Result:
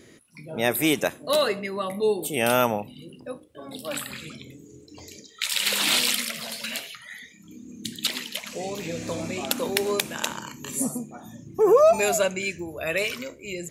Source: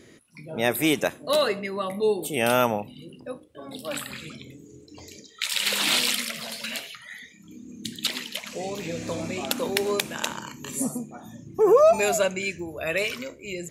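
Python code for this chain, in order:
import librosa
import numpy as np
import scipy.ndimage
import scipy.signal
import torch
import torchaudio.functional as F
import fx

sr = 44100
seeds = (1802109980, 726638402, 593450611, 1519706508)

y = fx.high_shelf(x, sr, hz=8500.0, db=4.0)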